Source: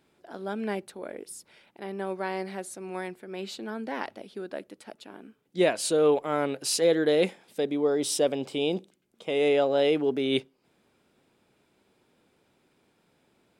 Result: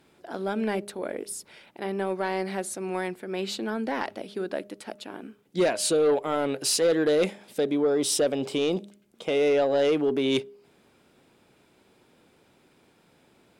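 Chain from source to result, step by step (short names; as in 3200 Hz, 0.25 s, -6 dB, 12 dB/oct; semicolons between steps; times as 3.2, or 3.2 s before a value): de-hum 203.6 Hz, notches 3; in parallel at +2 dB: compressor, threshold -31 dBFS, peak gain reduction 13 dB; on the sum: sine folder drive 4 dB, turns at -8 dBFS; gain -8.5 dB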